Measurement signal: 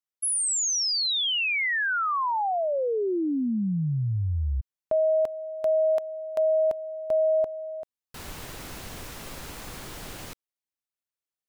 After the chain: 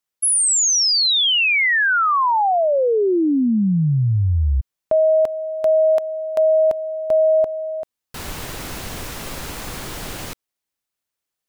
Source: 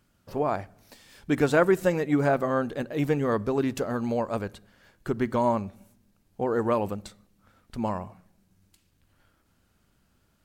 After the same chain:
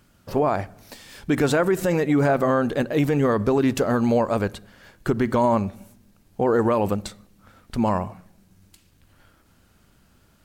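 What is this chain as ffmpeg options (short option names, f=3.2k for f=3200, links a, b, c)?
-af "alimiter=limit=-20.5dB:level=0:latency=1:release=54,volume=9dB"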